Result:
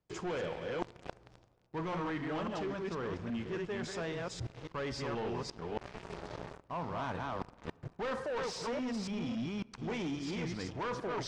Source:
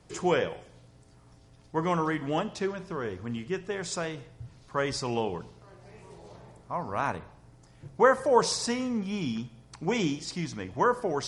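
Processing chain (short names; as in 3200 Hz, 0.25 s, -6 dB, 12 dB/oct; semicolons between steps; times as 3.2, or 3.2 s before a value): reverse delay 0.275 s, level -4 dB; high shelf 6800 Hz +8.5 dB; sample leveller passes 5; reverse; compressor 6:1, threshold -38 dBFS, peak gain reduction 24.5 dB; reverse; air absorption 140 m; on a send: reverb RT60 2.1 s, pre-delay 3 ms, DRR 22 dB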